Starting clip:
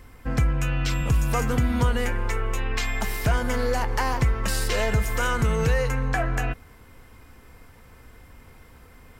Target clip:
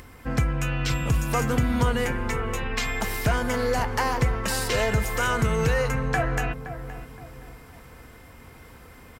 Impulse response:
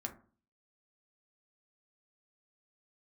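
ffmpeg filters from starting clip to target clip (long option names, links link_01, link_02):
-filter_complex "[0:a]highpass=frequency=73:poles=1,acompressor=mode=upward:threshold=-42dB:ratio=2.5,asplit=2[link_01][link_02];[link_02]adelay=519,lowpass=frequency=1200:poles=1,volume=-10.5dB,asplit=2[link_03][link_04];[link_04]adelay=519,lowpass=frequency=1200:poles=1,volume=0.4,asplit=2[link_05][link_06];[link_06]adelay=519,lowpass=frequency=1200:poles=1,volume=0.4,asplit=2[link_07][link_08];[link_08]adelay=519,lowpass=frequency=1200:poles=1,volume=0.4[link_09];[link_01][link_03][link_05][link_07][link_09]amix=inputs=5:normalize=0,volume=1dB"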